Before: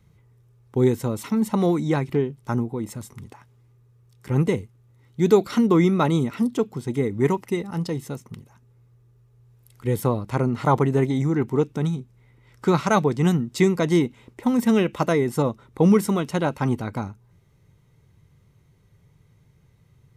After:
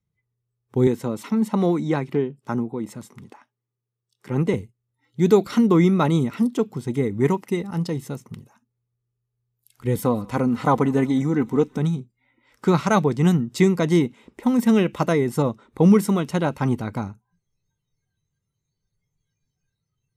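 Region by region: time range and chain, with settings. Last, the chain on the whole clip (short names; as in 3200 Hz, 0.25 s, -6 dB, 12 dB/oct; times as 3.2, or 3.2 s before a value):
0.87–4.54 HPF 160 Hz + high shelf 6800 Hz -7.5 dB
9.95–11.79 comb 4 ms, depth 46% + thinning echo 0.183 s, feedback 65%, high-pass 1100 Hz, level -22.5 dB
whole clip: spectral noise reduction 23 dB; bell 190 Hz +2.5 dB 0.87 oct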